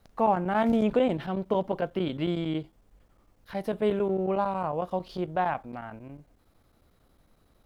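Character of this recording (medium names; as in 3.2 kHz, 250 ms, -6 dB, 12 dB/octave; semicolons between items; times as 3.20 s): chopped level 11 Hz, depth 65%, duty 90%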